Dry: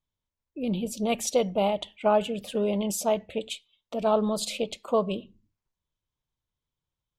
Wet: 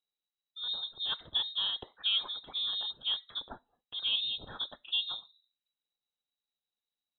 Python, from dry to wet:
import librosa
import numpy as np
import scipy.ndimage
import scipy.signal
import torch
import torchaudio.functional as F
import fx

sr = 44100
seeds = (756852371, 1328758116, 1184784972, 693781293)

y = fx.freq_invert(x, sr, carrier_hz=3900)
y = F.gain(torch.from_numpy(y), -8.5).numpy()